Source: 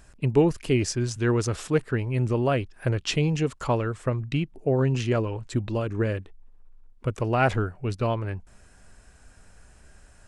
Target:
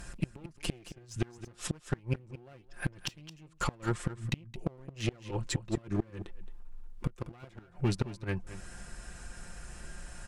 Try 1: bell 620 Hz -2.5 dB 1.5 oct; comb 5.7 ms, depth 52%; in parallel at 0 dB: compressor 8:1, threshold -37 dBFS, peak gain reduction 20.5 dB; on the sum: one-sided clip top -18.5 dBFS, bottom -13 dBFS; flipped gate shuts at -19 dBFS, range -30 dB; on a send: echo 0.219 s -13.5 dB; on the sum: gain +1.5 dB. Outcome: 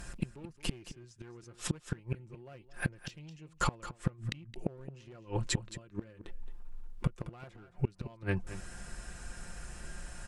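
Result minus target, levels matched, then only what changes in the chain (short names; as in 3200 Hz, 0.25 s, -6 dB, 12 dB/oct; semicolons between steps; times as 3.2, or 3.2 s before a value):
compressor: peak gain reduction -7 dB; one-sided clip: distortion -6 dB
change: compressor 8:1, threshold -45 dBFS, peak gain reduction 27.5 dB; change: one-sided clip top -28 dBFS, bottom -13 dBFS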